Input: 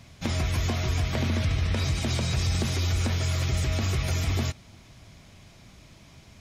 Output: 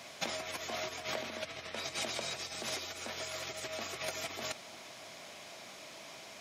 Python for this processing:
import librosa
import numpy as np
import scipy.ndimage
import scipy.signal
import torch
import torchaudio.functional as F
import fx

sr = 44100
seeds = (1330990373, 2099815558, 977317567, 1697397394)

y = fx.peak_eq(x, sr, hz=630.0, db=4.5, octaves=0.45)
y = fx.over_compress(y, sr, threshold_db=-32.0, ratio=-1.0)
y = scipy.signal.sosfilt(scipy.signal.butter(2, 450.0, 'highpass', fs=sr, output='sos'), y)